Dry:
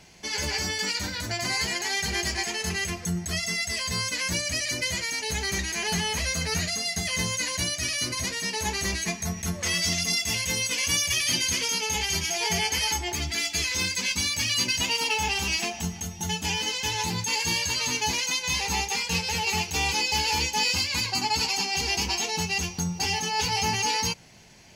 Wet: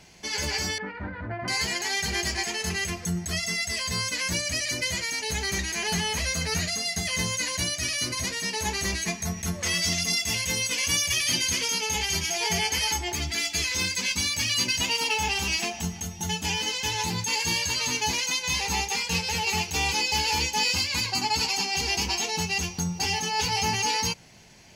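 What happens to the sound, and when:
0.78–1.48 LPF 1700 Hz 24 dB/oct

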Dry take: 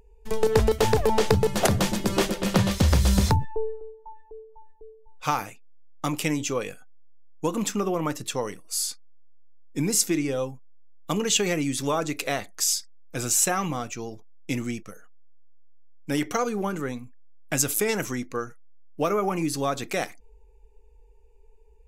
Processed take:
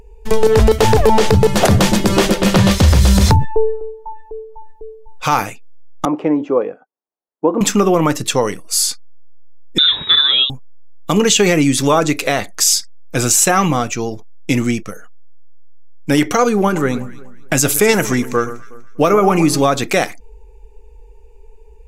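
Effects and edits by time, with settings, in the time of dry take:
6.05–7.61 Butterworth band-pass 510 Hz, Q 0.71
9.78–10.5 inverted band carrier 3800 Hz
16.55–19.64 echo with dull and thin repeats by turns 0.122 s, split 1400 Hz, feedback 54%, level -13 dB
whole clip: high shelf 9000 Hz -4 dB; maximiser +14.5 dB; gain -1 dB

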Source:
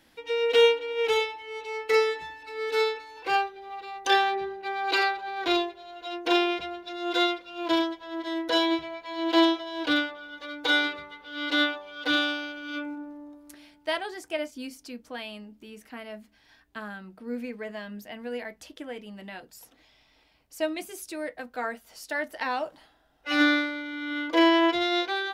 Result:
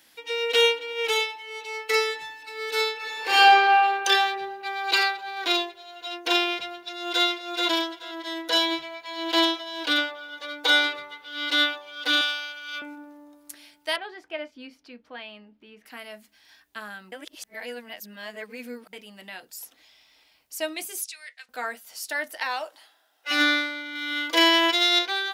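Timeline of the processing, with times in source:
2.95–3.71 reverb throw, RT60 2.2 s, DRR -9.5 dB
6.82–7.25 echo throw 0.43 s, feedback 15%, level -3.5 dB
9.98–11.18 bell 620 Hz +5 dB 1.6 oct
12.21–12.82 HPF 730 Hz
13.96–15.86 air absorption 350 m
17.12–18.93 reverse
21.04–21.49 Butterworth band-pass 3900 Hz, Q 0.73
22.4–23.31 HPF 410 Hz
23.95–24.99 high shelf 2600 Hz +7.5 dB
whole clip: tilt +3 dB/oct

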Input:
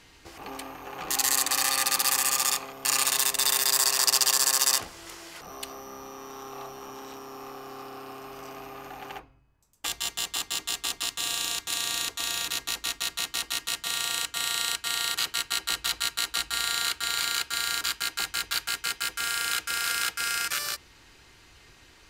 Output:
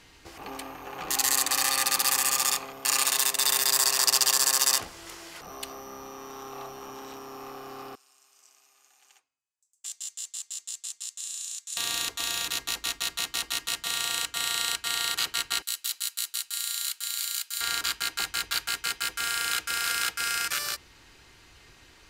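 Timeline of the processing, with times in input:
2.8–3.49 HPF 190 Hz 6 dB/oct
7.95–11.77 band-pass 7500 Hz, Q 2.7
15.62–17.61 differentiator

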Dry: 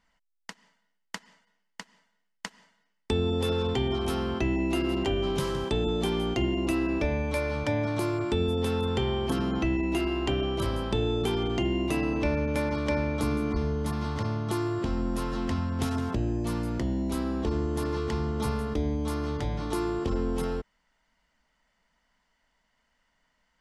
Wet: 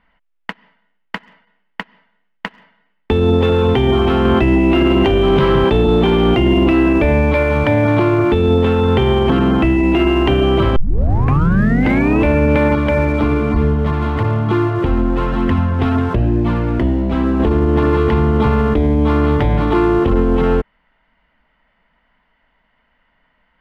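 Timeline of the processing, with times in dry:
4.25–6.93 fast leveller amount 100%
10.76 tape start 1.45 s
12.75–17.4 flange 1.1 Hz, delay 0.5 ms, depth 2.7 ms, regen -45%
whole clip: inverse Chebyshev low-pass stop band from 8900 Hz, stop band 60 dB; sample leveller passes 1; maximiser +18.5 dB; gain -5 dB

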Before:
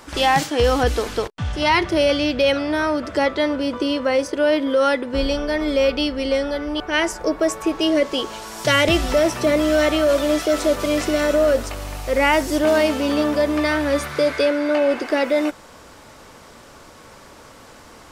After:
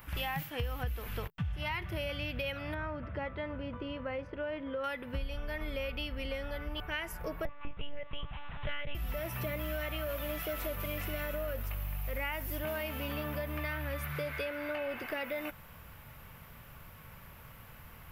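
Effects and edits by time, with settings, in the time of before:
2.74–4.84 tape spacing loss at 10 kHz 33 dB
7.45–8.95 monotone LPC vocoder at 8 kHz 290 Hz
whole clip: EQ curve 160 Hz 0 dB, 290 Hz -19 dB, 2700 Hz -6 dB, 4200 Hz -18 dB, 6200 Hz -21 dB, 8800 Hz -18 dB, 13000 Hz +8 dB; compressor, threshold -33 dBFS

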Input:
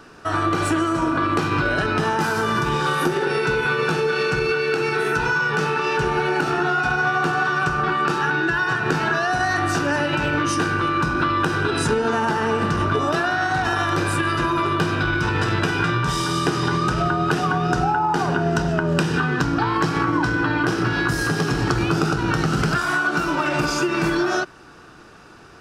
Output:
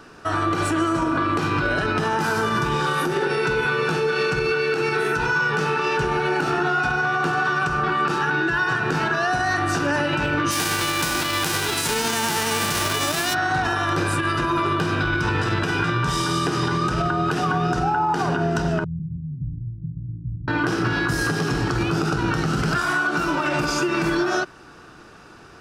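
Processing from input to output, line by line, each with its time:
10.5–13.33 spectral whitening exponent 0.3
18.84–20.48 inverse Chebyshev low-pass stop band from 630 Hz, stop band 70 dB
whole clip: limiter -12.5 dBFS

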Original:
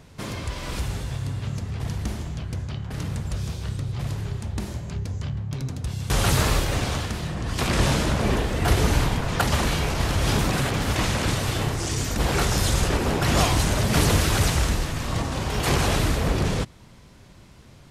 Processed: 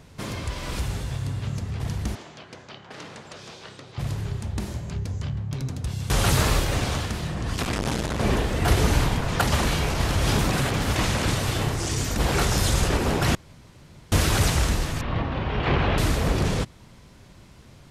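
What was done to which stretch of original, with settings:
2.15–3.98 BPF 390–5600 Hz
7.56–8.2 core saturation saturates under 470 Hz
13.35–14.12 room tone
15.01–15.98 LPF 3200 Hz 24 dB/oct

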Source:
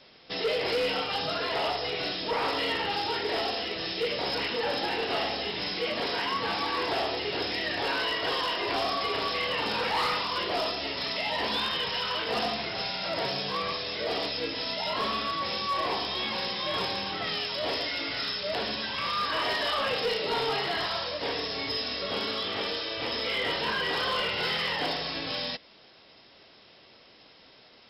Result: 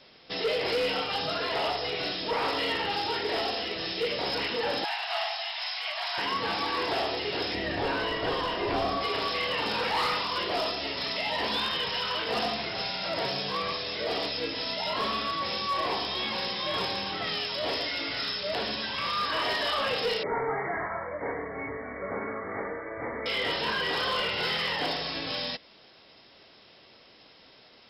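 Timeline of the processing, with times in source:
4.84–6.18 Chebyshev high-pass 650 Hz, order 6
7.54–9.03 tilt -2.5 dB/oct
20.23–23.26 brick-wall FIR low-pass 2300 Hz

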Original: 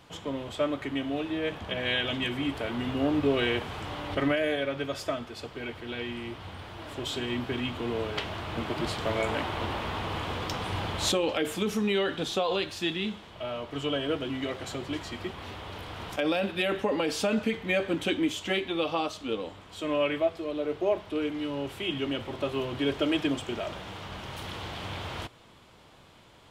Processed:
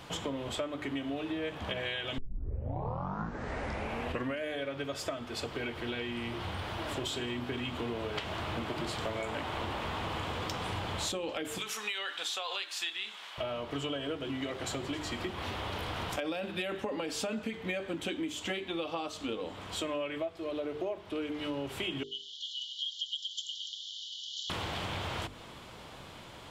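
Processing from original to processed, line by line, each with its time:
2.18 tape start 2.27 s
11.58–13.38 HPF 1200 Hz
22.03–24.5 brick-wall FIR band-pass 2900–7400 Hz
whole clip: notches 50/100/150/200/250/300/350/400/450 Hz; dynamic EQ 7500 Hz, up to +4 dB, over -60 dBFS, Q 4.4; compressor 8:1, threshold -40 dBFS; gain +7 dB

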